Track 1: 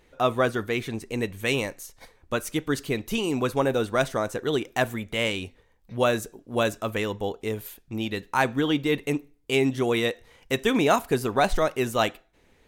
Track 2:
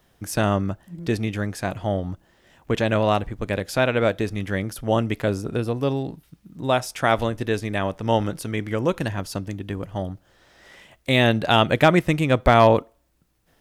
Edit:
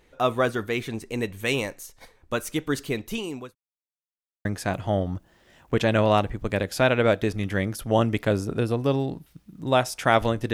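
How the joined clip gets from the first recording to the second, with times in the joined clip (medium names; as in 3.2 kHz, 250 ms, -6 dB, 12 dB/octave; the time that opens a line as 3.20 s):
track 1
2.73–3.55 s: fade out equal-power
3.55–4.45 s: mute
4.45 s: go over to track 2 from 1.42 s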